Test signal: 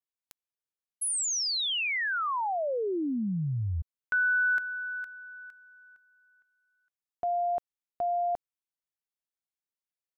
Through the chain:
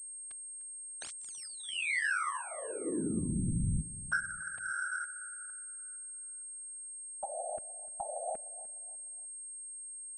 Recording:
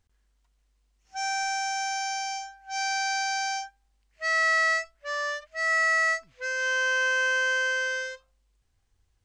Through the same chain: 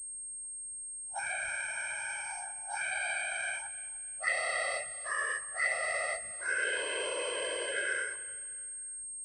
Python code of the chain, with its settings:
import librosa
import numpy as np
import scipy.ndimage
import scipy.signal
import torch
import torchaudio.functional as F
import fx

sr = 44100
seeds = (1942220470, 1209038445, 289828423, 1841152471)

y = fx.whisperise(x, sr, seeds[0])
y = fx.env_phaser(y, sr, low_hz=310.0, high_hz=1600.0, full_db=-21.0)
y = fx.echo_feedback(y, sr, ms=300, feedback_pct=37, wet_db=-17)
y = fx.pwm(y, sr, carrier_hz=8500.0)
y = y * librosa.db_to_amplitude(-1.5)